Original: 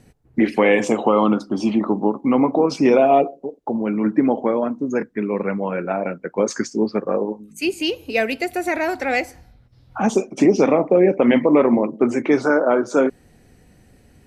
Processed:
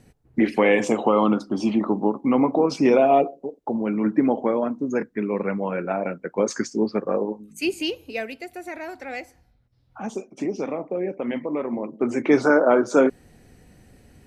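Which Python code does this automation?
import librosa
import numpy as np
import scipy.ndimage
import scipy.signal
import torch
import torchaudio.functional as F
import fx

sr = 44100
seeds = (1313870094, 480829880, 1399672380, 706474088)

y = fx.gain(x, sr, db=fx.line((7.76, -2.5), (8.37, -12.5), (11.68, -12.5), (12.35, 0.0)))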